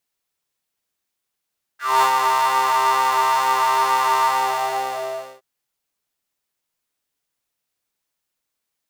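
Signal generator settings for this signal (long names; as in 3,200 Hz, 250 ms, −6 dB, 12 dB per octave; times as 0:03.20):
subtractive patch with pulse-width modulation C3, oscillator 2 square, interval +19 semitones, detune 16 cents, oscillator 2 level −5 dB, noise −22 dB, filter highpass, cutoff 590 Hz, Q 8.6, filter envelope 1.5 octaves, filter decay 0.12 s, filter sustain 45%, attack 230 ms, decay 0.09 s, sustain −4 dB, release 1.20 s, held 2.42 s, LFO 2.2 Hz, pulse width 46%, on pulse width 8%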